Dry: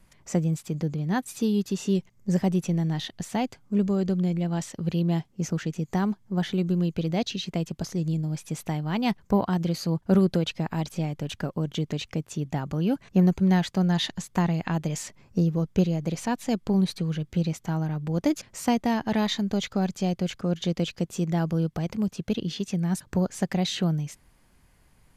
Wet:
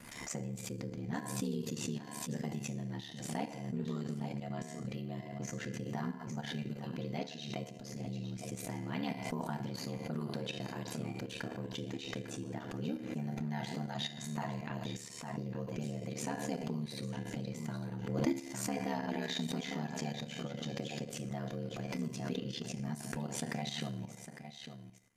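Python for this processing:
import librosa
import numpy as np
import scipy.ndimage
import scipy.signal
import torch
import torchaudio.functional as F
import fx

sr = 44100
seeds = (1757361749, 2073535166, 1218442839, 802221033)

y = scipy.signal.sosfilt(scipy.signal.butter(2, 80.0, 'highpass', fs=sr, output='sos'), x)
y = fx.peak_eq(y, sr, hz=1900.0, db=2.5, octaves=0.64)
y = fx.comb_fb(y, sr, f0_hz=340.0, decay_s=0.68, harmonics='all', damping=0.0, mix_pct=80)
y = y + 10.0 ** (-11.0 / 20.0) * np.pad(y, (int(854 * sr / 1000.0), 0))[:len(y)]
y = fx.rev_fdn(y, sr, rt60_s=0.62, lf_ratio=0.8, hf_ratio=0.95, size_ms=20.0, drr_db=4.5)
y = fx.level_steps(y, sr, step_db=10)
y = y + 0.67 * np.pad(y, (int(4.3 * sr / 1000.0), 0))[:len(y)]
y = y * np.sin(2.0 * np.pi * 36.0 * np.arange(len(y)) / sr)
y = fx.pre_swell(y, sr, db_per_s=47.0)
y = y * 10.0 ** (3.5 / 20.0)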